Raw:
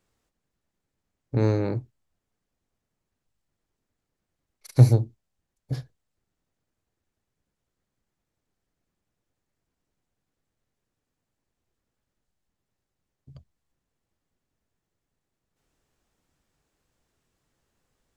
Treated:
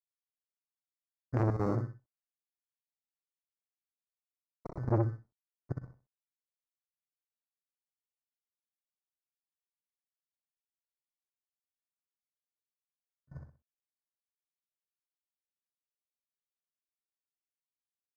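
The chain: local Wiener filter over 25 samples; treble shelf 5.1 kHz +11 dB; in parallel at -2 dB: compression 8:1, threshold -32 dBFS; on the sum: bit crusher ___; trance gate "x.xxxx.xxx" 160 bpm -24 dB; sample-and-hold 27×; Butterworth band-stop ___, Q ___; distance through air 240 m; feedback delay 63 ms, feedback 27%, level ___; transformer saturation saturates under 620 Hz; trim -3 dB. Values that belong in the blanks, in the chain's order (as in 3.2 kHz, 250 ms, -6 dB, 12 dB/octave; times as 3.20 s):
9-bit, 3 kHz, 0.71, -6.5 dB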